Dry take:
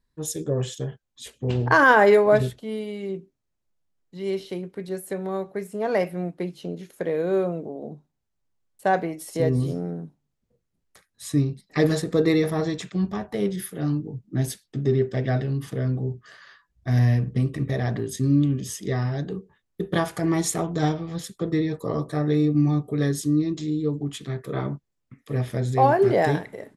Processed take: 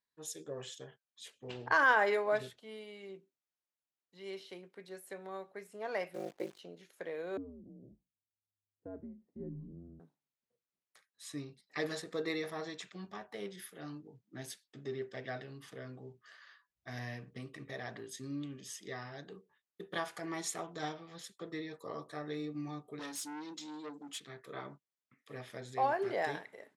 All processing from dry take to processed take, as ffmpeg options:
ffmpeg -i in.wav -filter_complex "[0:a]asettb=1/sr,asplit=3[link_01][link_02][link_03];[link_01]atrim=end=6.144[link_04];[link_02]atrim=start=6.14:end=6.59,asetpts=PTS-STARTPTS,afade=type=in:duration=0.004:curve=qsin,afade=type=out:start_time=0.446:duration=0.004:curve=qsin,equalizer=frequency=460:width_type=o:width=1.4:gain=14,aeval=exprs='val(0)*sin(2*PI*26*n/s)':channel_layout=same,acrusher=bits=8:dc=4:mix=0:aa=0.000001[link_05];[link_03]atrim=start=6.586[link_06];[link_04][link_05]acrossfade=duration=0.004:curve1=hsin:curve2=qsin[link_07];[link_07][link_06]acrossfade=duration=0.004:curve1=qsin:curve2=hsin,asettb=1/sr,asplit=3[link_08][link_09][link_10];[link_08]atrim=end=7.374[link_11];[link_09]atrim=start=7.37:end=10,asetpts=PTS-STARTPTS,afade=type=in:duration=0.004:curve=qsin,afade=type=out:start_time=2.626:duration=0.004:curve=qsin,lowpass=frequency=290:width_type=q:width=2.3,afreqshift=-100[link_12];[link_10]atrim=start=9.996[link_13];[link_11][link_12]acrossfade=duration=0.004:curve1=hsin:curve2=qsin[link_14];[link_14][link_13]acrossfade=duration=0.004:curve1=qsin:curve2=hsin,asettb=1/sr,asplit=3[link_15][link_16][link_17];[link_15]atrim=end=22.994[link_18];[link_16]atrim=start=22.99:end=24.2,asetpts=PTS-STARTPTS,afade=type=in:duration=0.004:curve=qsin,afade=type=out:start_time=1.206:duration=0.004:curve=qsin,aemphasis=mode=production:type=cd,aecho=1:1:3.9:0.87,atrim=end_sample=53361,aeval=exprs='(tanh(15.8*val(0)+0.05)-tanh(0.05))/15.8':channel_layout=same[link_19];[link_17]atrim=start=24.196[link_20];[link_18][link_19]acrossfade=duration=0.004:curve1=hsin:curve2=qsin[link_21];[link_21][link_20]acrossfade=duration=0.004:curve1=qsin:curve2=hsin,highpass=frequency=1200:poles=1,highshelf=frequency=8300:gain=-11.5,volume=-7dB" out.wav

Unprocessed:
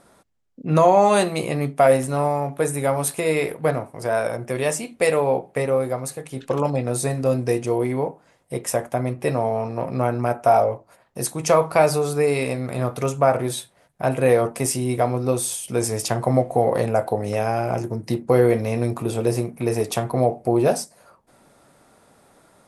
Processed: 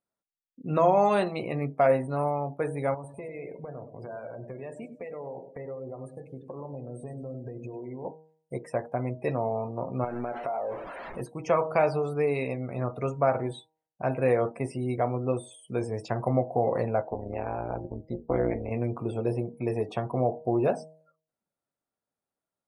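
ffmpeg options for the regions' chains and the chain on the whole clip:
ffmpeg -i in.wav -filter_complex "[0:a]asettb=1/sr,asplit=3[link_01][link_02][link_03];[link_01]atrim=end=2.944[link_04];[link_02]atrim=start=2.94:end=8.05,asetpts=PTS-STARTPTS,afade=type=in:duration=0.004:curve=qsin,afade=type=out:start_time=5.106:duration=0.004:curve=qsin,highshelf=frequency=3100:gain=-7,acompressor=threshold=-28dB:ratio=10:attack=3.2:release=140:knee=1:detection=peak,aecho=1:1:99|198|297|396|495|594|693:0.335|0.191|0.109|0.062|0.0354|0.0202|0.0115,atrim=end_sample=225351[link_05];[link_03]atrim=start=8.046[link_06];[link_04][link_05]acrossfade=duration=0.004:curve1=hsin:curve2=qsin[link_07];[link_07][link_06]acrossfade=duration=0.004:curve1=qsin:curve2=hsin,asettb=1/sr,asplit=3[link_08][link_09][link_10];[link_08]atrim=end=10.044[link_11];[link_09]atrim=start=10.04:end=11.21,asetpts=PTS-STARTPTS,afade=type=in:duration=0.004:curve=qsin,afade=type=out:start_time=1.166:duration=0.004:curve=qsin,aeval=exprs='val(0)+0.5*0.0531*sgn(val(0))':channel_layout=same,equalizer=frequency=110:width_type=o:width=1:gain=-12.5,acompressor=threshold=-21dB:ratio=8:attack=3.2:release=140:knee=1:detection=peak[link_12];[link_10]atrim=start=11.206[link_13];[link_11][link_12]acrossfade=duration=0.004:curve1=hsin:curve2=qsin[link_14];[link_14][link_13]acrossfade=duration=0.004:curve1=qsin:curve2=hsin,asettb=1/sr,asplit=3[link_15][link_16][link_17];[link_15]atrim=end=17.014[link_18];[link_16]atrim=start=17.01:end=18.71,asetpts=PTS-STARTPTS,afade=type=in:duration=0.004:curve=qsin,afade=type=out:start_time=1.696:duration=0.004:curve=qsin,tremolo=f=180:d=0.889,lowpass=4100[link_19];[link_17]atrim=start=18.706[link_20];[link_18][link_19]acrossfade=duration=0.004:curve1=hsin:curve2=qsin[link_21];[link_21][link_20]acrossfade=duration=0.004:curve1=qsin:curve2=hsin,acrossover=split=3500[link_22][link_23];[link_23]acompressor=threshold=-39dB:ratio=4:attack=1:release=60[link_24];[link_22][link_24]amix=inputs=2:normalize=0,afftdn=noise_reduction=31:noise_floor=-37,bandreject=frequency=157.7:width_type=h:width=4,bandreject=frequency=315.4:width_type=h:width=4,bandreject=frequency=473.1:width_type=h:width=4,bandreject=frequency=630.8:width_type=h:width=4,bandreject=frequency=788.5:width_type=h:width=4,bandreject=frequency=946.2:width_type=h:width=4,volume=-6.5dB" out.wav

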